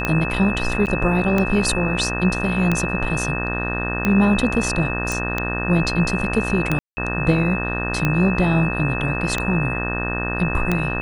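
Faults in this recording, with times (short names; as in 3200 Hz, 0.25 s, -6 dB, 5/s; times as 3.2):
buzz 60 Hz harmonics 31 -26 dBFS
tick 45 rpm -7 dBFS
tone 2600 Hz -26 dBFS
0.86–0.87 gap 8.6 ms
5.12 pop
6.79–6.97 gap 0.18 s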